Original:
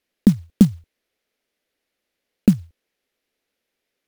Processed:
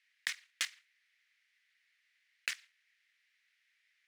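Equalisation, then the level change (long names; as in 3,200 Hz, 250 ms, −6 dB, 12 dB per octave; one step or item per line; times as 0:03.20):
four-pole ladder high-pass 1,700 Hz, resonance 60%
high-frequency loss of the air 89 metres
high-shelf EQ 9,100 Hz +10 dB
+12.0 dB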